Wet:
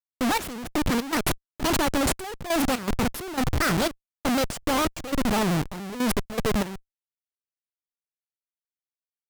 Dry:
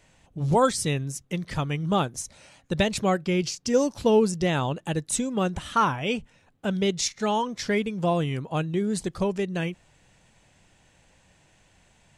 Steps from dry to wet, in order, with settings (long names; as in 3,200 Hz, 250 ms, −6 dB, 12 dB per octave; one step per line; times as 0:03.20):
gliding playback speed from 178% → 84%
high-pass filter 61 Hz 24 dB per octave
comparator with hysteresis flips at −30.5 dBFS
gate pattern "xxx...xx.xx..x" 120 BPM −12 dB
pitch modulation by a square or saw wave saw down 6.9 Hz, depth 100 cents
level +5 dB